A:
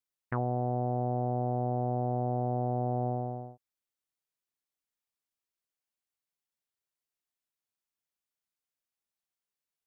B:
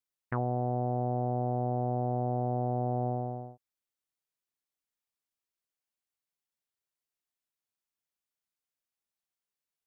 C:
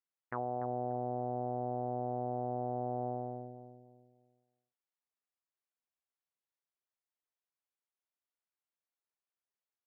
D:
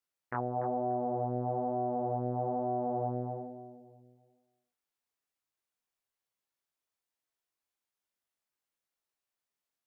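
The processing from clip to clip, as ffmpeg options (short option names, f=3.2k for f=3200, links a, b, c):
-af anull
-filter_complex "[0:a]bandpass=f=890:t=q:w=0.58:csg=0,asplit=2[a][b];[b]adelay=291,lowpass=f=830:p=1,volume=-8dB,asplit=2[c][d];[d]adelay=291,lowpass=f=830:p=1,volume=0.38,asplit=2[e][f];[f]adelay=291,lowpass=f=830:p=1,volume=0.38,asplit=2[g][h];[h]adelay=291,lowpass=f=830:p=1,volume=0.38[i];[c][e][g][i]amix=inputs=4:normalize=0[j];[a][j]amix=inputs=2:normalize=0,volume=-2.5dB"
-af "flanger=delay=19:depth=4.8:speed=1.1,volume=7dB"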